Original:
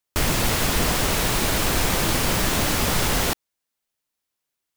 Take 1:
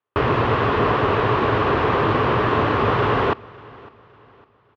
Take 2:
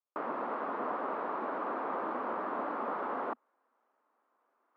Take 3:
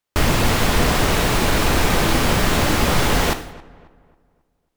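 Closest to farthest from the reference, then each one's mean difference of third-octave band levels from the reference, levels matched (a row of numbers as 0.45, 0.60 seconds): 3, 1, 2; 2.5, 14.0, 20.5 decibels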